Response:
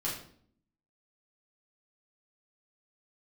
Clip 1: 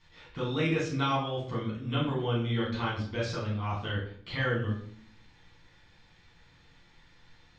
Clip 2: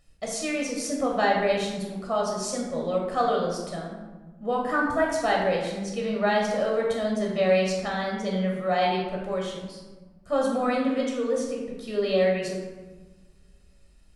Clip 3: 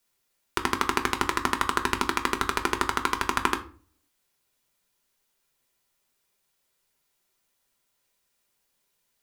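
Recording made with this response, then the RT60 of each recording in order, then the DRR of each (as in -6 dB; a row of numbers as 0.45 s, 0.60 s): 1; 0.55 s, 1.2 s, 0.45 s; -6.5 dB, -2.0 dB, 5.0 dB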